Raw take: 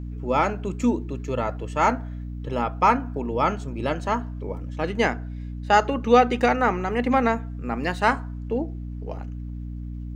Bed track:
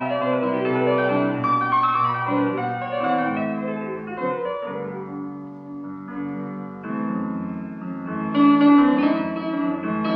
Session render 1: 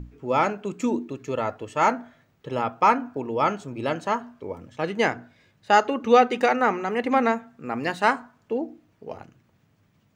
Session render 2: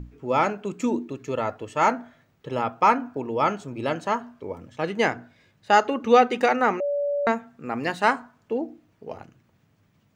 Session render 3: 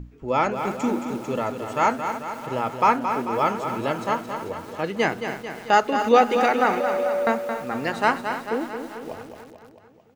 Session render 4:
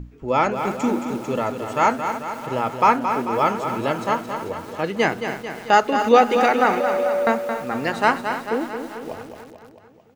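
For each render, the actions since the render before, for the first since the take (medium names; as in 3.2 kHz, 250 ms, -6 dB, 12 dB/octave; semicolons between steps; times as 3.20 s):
hum notches 60/120/180/240/300 Hz
6.80–7.27 s: bleep 574 Hz -22 dBFS
feedback delay 221 ms, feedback 60%, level -8 dB; bit-crushed delay 285 ms, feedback 55%, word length 6-bit, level -13 dB
trim +2.5 dB; peak limiter -2 dBFS, peak gain reduction 1 dB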